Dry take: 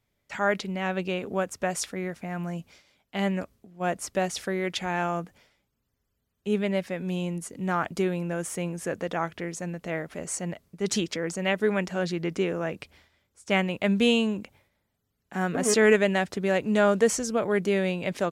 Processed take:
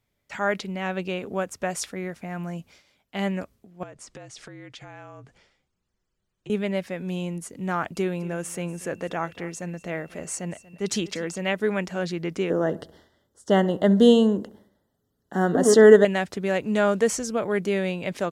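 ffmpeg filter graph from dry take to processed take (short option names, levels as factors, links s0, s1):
-filter_complex "[0:a]asettb=1/sr,asplit=3[s0][s1][s2];[s0]atrim=end=3.834[s3];[s1]atrim=start=3.83:end=6.5,asetpts=PTS-STARTPTS,afade=t=in:d=0.004:c=qsin,afade=t=out:st=2.666:d=0.004:c=qsin,lowpass=f=8700:w=0.5412,lowpass=f=8700:w=1.3066,afreqshift=-48,acompressor=threshold=0.01:ratio=6:attack=3.2:release=140:knee=1:detection=peak[s4];[s2]atrim=start=6.496[s5];[s3][s4]acrossfade=d=0.004:c1=hsin:c2=qsin[s6];[s6][s5]acrossfade=d=0.004:c1=qsin:c2=hsin,asettb=1/sr,asplit=3[s7][s8][s9];[s7]atrim=end=7.954[s10];[s8]atrim=start=7.95:end=11.42,asetpts=PTS-STARTPTS,afade=t=in:d=0.004:c=qsin,afade=t=out:st=3.466:d=0.004:c=qsin,aeval=exprs='val(0)+0.00126*sin(2*PI*2700*n/s)':c=same,aecho=1:1:237:0.112,atrim=end_sample=153027[s11];[s9]atrim=start=11.416[s12];[s10][s11]acrossfade=d=0.004:c1=hsin:c2=qsin[s13];[s13][s12]acrossfade=d=0.004:c1=qsin:c2=hsin,asettb=1/sr,asplit=3[s14][s15][s16];[s14]atrim=end=12.504[s17];[s15]atrim=start=12.5:end=16.05,asetpts=PTS-STARTPTS,afade=t=in:d=0.004:c=qsin,afade=t=out:st=3.546:d=0.004:c=qsin,asuperstop=centerf=2400:order=8:qfactor=2.6,equalizer=f=370:w=0.56:g=8.5,asplit=2[s18][s19];[s19]adelay=67,lowpass=f=1400:p=1,volume=0.141,asplit=2[s20][s21];[s21]adelay=67,lowpass=f=1400:p=1,volume=0.52,asplit=2[s22][s23];[s23]adelay=67,lowpass=f=1400:p=1,volume=0.52,asplit=2[s24][s25];[s25]adelay=67,lowpass=f=1400:p=1,volume=0.52,asplit=2[s26][s27];[s27]adelay=67,lowpass=f=1400:p=1,volume=0.52[s28];[s18][s20][s22][s24][s26][s28]amix=inputs=6:normalize=0,atrim=end_sample=156555[s29];[s16]atrim=start=16.046[s30];[s17][s29]acrossfade=d=0.004:c1=hsin:c2=qsin[s31];[s31][s30]acrossfade=d=0.004:c1=qsin:c2=hsin"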